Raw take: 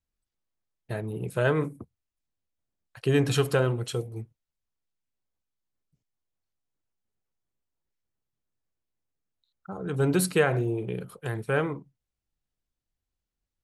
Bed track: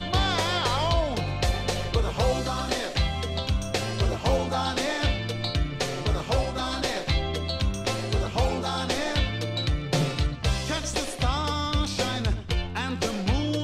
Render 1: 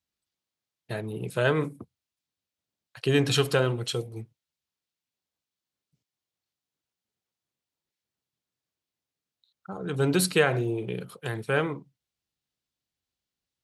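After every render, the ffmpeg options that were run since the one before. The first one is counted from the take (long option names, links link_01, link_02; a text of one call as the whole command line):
ffmpeg -i in.wav -af "highpass=100,equalizer=frequency=3900:width=0.88:gain=7" out.wav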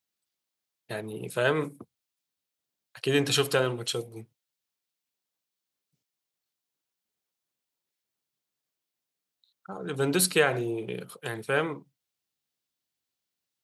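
ffmpeg -i in.wav -af "highpass=frequency=230:poles=1,highshelf=frequency=9100:gain=6.5" out.wav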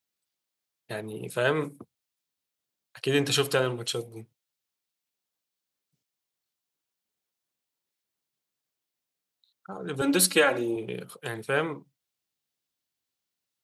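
ffmpeg -i in.wav -filter_complex "[0:a]asettb=1/sr,asplit=3[link_01][link_02][link_03];[link_01]atrim=end=10.014[link_04];[link_02]atrim=start=10.01:end=10.76,asetpts=PTS-STARTPTS,afade=type=in:duration=0.004:curve=qsin,afade=type=out:start_time=0.746:duration=0.004:curve=qsin,aecho=1:1:3.6:0.9,atrim=end_sample=33075[link_05];[link_03]atrim=start=10.756[link_06];[link_04][link_05]acrossfade=duration=0.004:curve1=hsin:curve2=qsin[link_07];[link_07][link_06]acrossfade=duration=0.004:curve1=qsin:curve2=hsin" out.wav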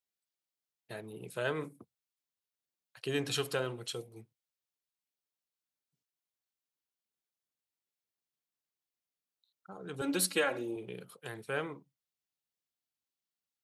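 ffmpeg -i in.wav -af "volume=-9dB" out.wav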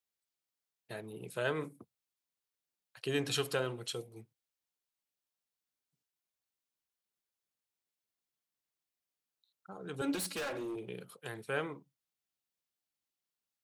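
ffmpeg -i in.wav -filter_complex "[0:a]asettb=1/sr,asplit=3[link_01][link_02][link_03];[link_01]atrim=end=10.154[link_04];[link_02]atrim=start=10.15:end=10.87,asetpts=PTS-STARTPTS,afade=type=in:duration=0.004:curve=qsin,afade=type=out:start_time=0.716:duration=0.004:curve=qsin,volume=35.5dB,asoftclip=hard,volume=-35.5dB[link_05];[link_03]atrim=start=10.866[link_06];[link_04][link_05]acrossfade=duration=0.004:curve1=hsin:curve2=qsin[link_07];[link_07][link_06]acrossfade=duration=0.004:curve1=qsin:curve2=hsin" out.wav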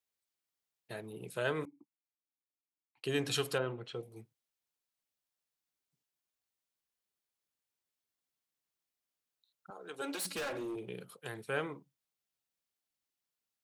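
ffmpeg -i in.wav -filter_complex "[0:a]asettb=1/sr,asplit=3[link_01][link_02][link_03];[link_01]atrim=end=1.654[link_04];[link_02]atrim=start=1.65:end=3.04,asetpts=PTS-STARTPTS,afade=type=in:duration=0.004:curve=qsin,afade=type=out:start_time=1.386:duration=0.004:curve=qsin,asplit=3[link_05][link_06][link_07];[link_05]bandpass=frequency=300:width_type=q:width=8,volume=0dB[link_08];[link_06]bandpass=frequency=870:width_type=q:width=8,volume=-6dB[link_09];[link_07]bandpass=frequency=2240:width_type=q:width=8,volume=-9dB[link_10];[link_08][link_09][link_10]amix=inputs=3:normalize=0[link_11];[link_03]atrim=start=3.036[link_12];[link_04][link_11]acrossfade=duration=0.004:curve1=hsin:curve2=qsin[link_13];[link_13][link_12]acrossfade=duration=0.004:curve1=qsin:curve2=hsin,asettb=1/sr,asplit=3[link_14][link_15][link_16];[link_14]atrim=end=3.584[link_17];[link_15]atrim=start=3.58:end=4.03,asetpts=PTS-STARTPTS,afade=type=in:duration=0.004:curve=qsin,afade=type=out:start_time=0.446:duration=0.004:curve=qsin,lowpass=2300[link_18];[link_16]atrim=start=4.026[link_19];[link_17][link_18]acrossfade=duration=0.004:curve1=hsin:curve2=qsin[link_20];[link_20][link_19]acrossfade=duration=0.004:curve1=qsin:curve2=hsin,asettb=1/sr,asplit=3[link_21][link_22][link_23];[link_21]atrim=end=9.704[link_24];[link_22]atrim=start=9.7:end=10.25,asetpts=PTS-STARTPTS,afade=type=in:duration=0.004:curve=qsin,afade=type=out:start_time=0.546:duration=0.004:curve=qsin,highpass=430[link_25];[link_23]atrim=start=10.246[link_26];[link_24][link_25]acrossfade=duration=0.004:curve1=hsin:curve2=qsin[link_27];[link_27][link_26]acrossfade=duration=0.004:curve1=qsin:curve2=hsin" out.wav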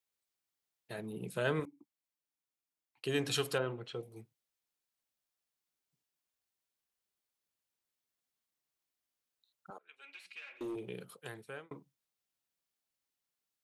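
ffmpeg -i in.wav -filter_complex "[0:a]asettb=1/sr,asplit=3[link_01][link_02][link_03];[link_01]atrim=end=0.984[link_04];[link_02]atrim=start=0.98:end=1.6,asetpts=PTS-STARTPTS,afade=type=in:duration=0.004:curve=qsin,afade=type=out:start_time=0.616:duration=0.004:curve=qsin,equalizer=frequency=190:width_type=o:width=0.96:gain=8.5[link_05];[link_03]atrim=start=1.596[link_06];[link_04][link_05]acrossfade=duration=0.004:curve1=hsin:curve2=qsin[link_07];[link_07][link_06]acrossfade=duration=0.004:curve1=qsin:curve2=hsin,asettb=1/sr,asplit=3[link_08][link_09][link_10];[link_08]atrim=end=9.784[link_11];[link_09]atrim=start=9.78:end=10.61,asetpts=PTS-STARTPTS,afade=type=in:duration=0.004:curve=qsin,afade=type=out:start_time=0.826:duration=0.004:curve=qsin,bandpass=frequency=2400:width_type=q:width=5.5[link_12];[link_10]atrim=start=10.606[link_13];[link_11][link_12]acrossfade=duration=0.004:curve1=hsin:curve2=qsin[link_14];[link_14][link_13]acrossfade=duration=0.004:curve1=qsin:curve2=hsin,asplit=2[link_15][link_16];[link_15]atrim=end=11.71,asetpts=PTS-STARTPTS,afade=type=out:start_time=11.14:duration=0.57[link_17];[link_16]atrim=start=11.71,asetpts=PTS-STARTPTS,afade=type=in:duration=0.004:curve=hsin[link_18];[link_17][link_18]concat=n=2:v=0:a=1" out.wav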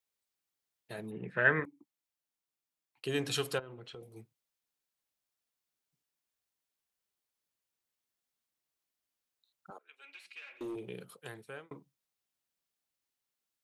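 ffmpeg -i in.wav -filter_complex "[0:a]asplit=3[link_01][link_02][link_03];[link_01]afade=type=out:start_time=1.1:duration=0.02[link_04];[link_02]lowpass=frequency=1800:width_type=q:width=12,afade=type=in:start_time=1.1:duration=0.02,afade=type=out:start_time=1.64:duration=0.02[link_05];[link_03]afade=type=in:start_time=1.64:duration=0.02[link_06];[link_04][link_05][link_06]amix=inputs=3:normalize=0,asettb=1/sr,asplit=3[link_07][link_08][link_09];[link_07]atrim=end=3.594[link_10];[link_08]atrim=start=3.59:end=4.02,asetpts=PTS-STARTPTS,afade=type=in:duration=0.004:curve=qsin,afade=type=out:start_time=0.426:duration=0.004:curve=qsin,acompressor=threshold=-44dB:ratio=6:attack=3.2:release=140:knee=1:detection=peak[link_11];[link_09]atrim=start=4.016[link_12];[link_10][link_11]acrossfade=duration=0.004:curve1=hsin:curve2=qsin[link_13];[link_13][link_12]acrossfade=duration=0.004:curve1=qsin:curve2=hsin,asettb=1/sr,asplit=3[link_14][link_15][link_16];[link_14]atrim=end=9.724[link_17];[link_15]atrim=start=9.72:end=10.42,asetpts=PTS-STARTPTS,afade=type=in:duration=0.004:curve=qsin,afade=type=out:start_time=0.696:duration=0.004:curve=qsin,highpass=frequency=230:width=0.5412,highpass=frequency=230:width=1.3066[link_18];[link_16]atrim=start=10.416[link_19];[link_17][link_18]acrossfade=duration=0.004:curve1=hsin:curve2=qsin[link_20];[link_20][link_19]acrossfade=duration=0.004:curve1=qsin:curve2=hsin" out.wav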